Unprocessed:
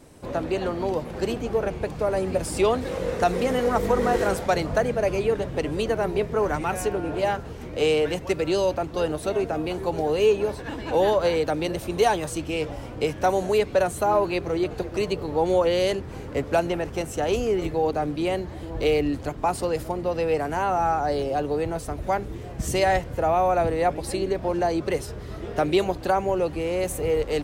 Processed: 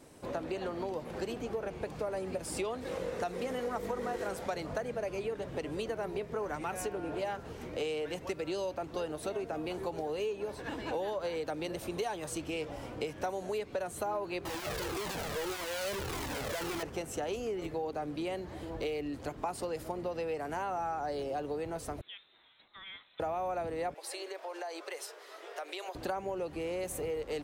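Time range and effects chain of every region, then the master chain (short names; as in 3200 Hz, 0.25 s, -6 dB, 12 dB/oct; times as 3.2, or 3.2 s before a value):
14.45–16.83 infinite clipping + cascading flanger falling 1.7 Hz
22.01–23.2 differentiator + compressor 5:1, threshold -38 dBFS + inverted band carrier 4000 Hz
23.94–25.95 Bessel high-pass 710 Hz, order 8 + compressor, threshold -32 dBFS
whole clip: compressor, threshold -28 dBFS; low shelf 130 Hz -9 dB; gain -4 dB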